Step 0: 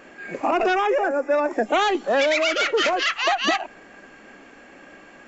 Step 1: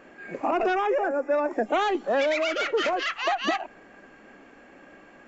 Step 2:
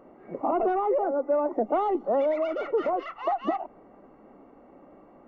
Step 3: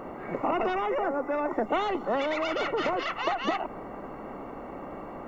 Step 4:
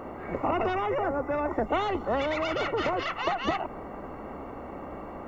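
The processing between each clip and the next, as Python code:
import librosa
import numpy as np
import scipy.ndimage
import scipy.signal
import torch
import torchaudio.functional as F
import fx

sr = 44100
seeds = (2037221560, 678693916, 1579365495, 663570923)

y1 = fx.high_shelf(x, sr, hz=2400.0, db=-7.5)
y1 = y1 * librosa.db_to_amplitude(-3.0)
y2 = scipy.signal.savgol_filter(y1, 65, 4, mode='constant')
y3 = fx.spectral_comp(y2, sr, ratio=2.0)
y4 = fx.octave_divider(y3, sr, octaves=2, level_db=-6.0)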